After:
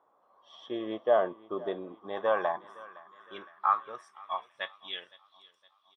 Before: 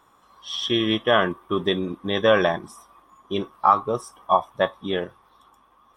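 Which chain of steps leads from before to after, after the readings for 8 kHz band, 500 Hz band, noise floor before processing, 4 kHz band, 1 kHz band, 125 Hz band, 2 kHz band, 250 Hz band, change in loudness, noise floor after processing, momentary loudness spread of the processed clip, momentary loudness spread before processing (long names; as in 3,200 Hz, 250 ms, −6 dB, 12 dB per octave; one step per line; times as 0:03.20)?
can't be measured, −8.5 dB, −59 dBFS, −16.5 dB, −9.0 dB, below −20 dB, −13.0 dB, −15.0 dB, −9.0 dB, −70 dBFS, 20 LU, 11 LU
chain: repeating echo 513 ms, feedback 57%, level −20 dB
band-pass filter sweep 620 Hz → 3,900 Hz, 0:01.61–0:05.54
level −2 dB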